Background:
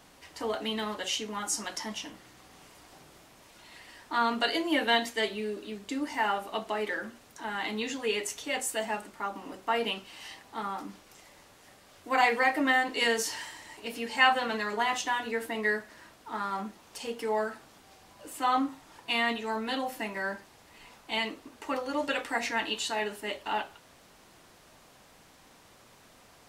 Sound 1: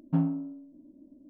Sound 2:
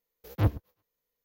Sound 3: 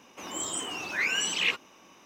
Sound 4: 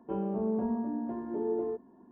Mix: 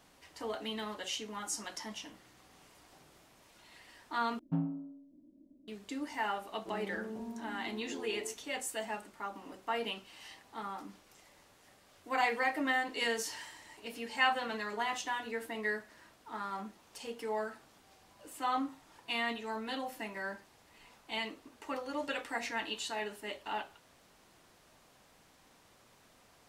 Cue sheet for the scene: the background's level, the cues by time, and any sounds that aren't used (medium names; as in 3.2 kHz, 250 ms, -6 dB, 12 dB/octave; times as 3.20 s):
background -6.5 dB
4.39 s: replace with 1 -7.5 dB
6.57 s: add 4 -11.5 dB
not used: 2, 3